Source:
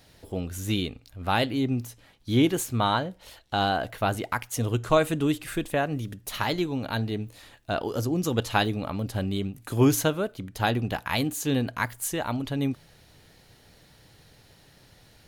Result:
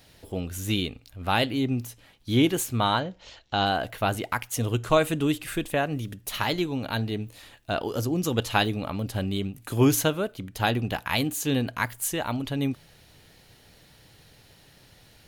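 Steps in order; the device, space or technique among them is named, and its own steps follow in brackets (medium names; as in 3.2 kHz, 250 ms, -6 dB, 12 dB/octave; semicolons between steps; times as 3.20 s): 3.00–3.66 s: steep low-pass 7.3 kHz 72 dB/octave; presence and air boost (peaking EQ 2.8 kHz +3 dB 0.77 oct; treble shelf 10 kHz +4 dB)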